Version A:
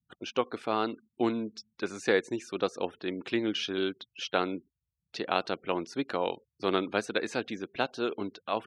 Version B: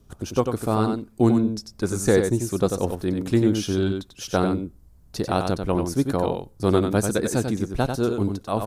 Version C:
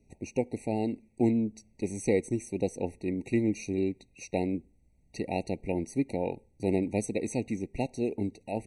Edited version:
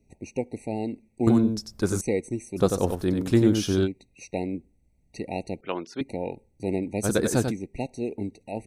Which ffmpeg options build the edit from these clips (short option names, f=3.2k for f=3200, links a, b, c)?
-filter_complex "[1:a]asplit=3[a][b][c];[2:a]asplit=5[d][e][f][g][h];[d]atrim=end=1.272[i];[a]atrim=start=1.268:end=2.012[j];[e]atrim=start=2.008:end=2.6[k];[b]atrim=start=2.56:end=3.88[l];[f]atrim=start=3.84:end=5.612[m];[0:a]atrim=start=5.608:end=6.012[n];[g]atrim=start=6.008:end=7.06[o];[c]atrim=start=7.02:end=7.53[p];[h]atrim=start=7.49[q];[i][j]acrossfade=d=0.004:c1=hsin:c2=hsin[r];[r][k]acrossfade=d=0.004:c1=hsin:c2=hsin[s];[s][l]acrossfade=d=0.04:c1=tri:c2=tri[t];[t][m]acrossfade=d=0.04:c1=tri:c2=tri[u];[u][n]acrossfade=d=0.004:c1=hsin:c2=hsin[v];[v][o]acrossfade=d=0.004:c1=hsin:c2=hsin[w];[w][p]acrossfade=d=0.04:c1=tri:c2=tri[x];[x][q]acrossfade=d=0.04:c1=tri:c2=tri"